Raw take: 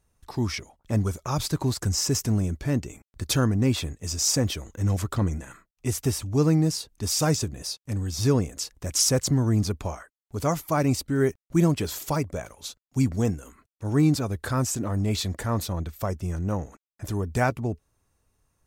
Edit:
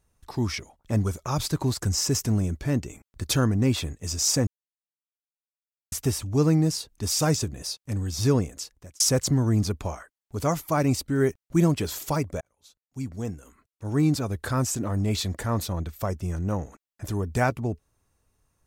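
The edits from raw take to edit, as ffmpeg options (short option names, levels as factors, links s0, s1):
-filter_complex "[0:a]asplit=5[s0][s1][s2][s3][s4];[s0]atrim=end=4.47,asetpts=PTS-STARTPTS,afade=t=out:st=4.466:d=0.004:c=hsin[s5];[s1]atrim=start=4.47:end=5.92,asetpts=PTS-STARTPTS,volume=0[s6];[s2]atrim=start=5.92:end=9,asetpts=PTS-STARTPTS,afade=t=in:d=0.004:c=hsin,afade=t=out:st=2.46:d=0.62[s7];[s3]atrim=start=9:end=12.41,asetpts=PTS-STARTPTS,afade=t=in:d=0.004:c=hsin,afade=t=out:st=3.406:d=0.004:c=hsin[s8];[s4]atrim=start=12.41,asetpts=PTS-STARTPTS,afade=t=in:d=1.98[s9];[s5][s6][s7][s8][s9]concat=n=5:v=0:a=1"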